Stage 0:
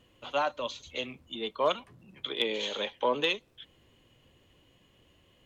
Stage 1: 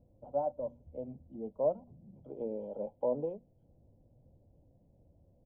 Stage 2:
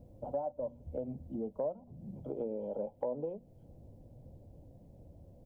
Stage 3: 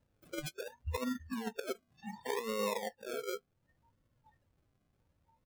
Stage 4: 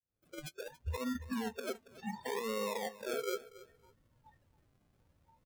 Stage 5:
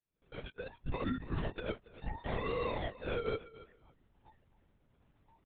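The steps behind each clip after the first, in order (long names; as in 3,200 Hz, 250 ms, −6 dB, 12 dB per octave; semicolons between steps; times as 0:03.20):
inverse Chebyshev low-pass filter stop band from 1,600 Hz, stop band 50 dB; mains-hum notches 60/120/180/240 Hz; comb filter 1.3 ms, depth 60%
downward compressor 4 to 1, threshold −45 dBFS, peak gain reduction 17 dB; level +9.5 dB
sample-and-hold swept by an LFO 38×, swing 60% 0.68 Hz; noise reduction from a noise print of the clip's start 29 dB; compressor whose output falls as the input rises −41 dBFS, ratio −0.5; level +5 dB
fade in at the beginning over 1.20 s; brickwall limiter −33.5 dBFS, peak gain reduction 8.5 dB; repeating echo 279 ms, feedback 22%, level −18 dB; level +4 dB
linear-prediction vocoder at 8 kHz whisper; level +1.5 dB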